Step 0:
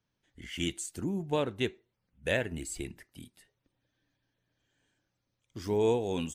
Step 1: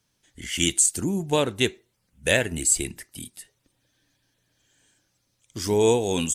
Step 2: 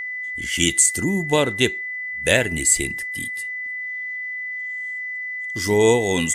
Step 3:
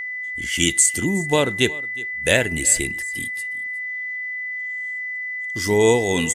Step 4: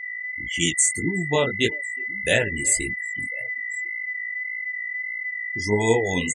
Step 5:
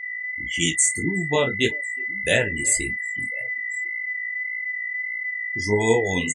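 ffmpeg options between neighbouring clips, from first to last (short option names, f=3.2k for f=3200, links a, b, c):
-af "equalizer=f=8.9k:w=0.53:g=14,volume=7dB"
-af "aeval=exprs='val(0)+0.0316*sin(2*PI*2000*n/s)':c=same,volume=3.5dB"
-af "aecho=1:1:364:0.0891"
-af "aecho=1:1:1045|2090|3135:0.1|0.033|0.0109,afftfilt=real='re*gte(hypot(re,im),0.0631)':imag='im*gte(hypot(re,im),0.0631)':win_size=1024:overlap=0.75,flanger=delay=17:depth=5.6:speed=1.7"
-filter_complex "[0:a]asplit=2[a][b];[b]adelay=31,volume=-13dB[c];[a][c]amix=inputs=2:normalize=0"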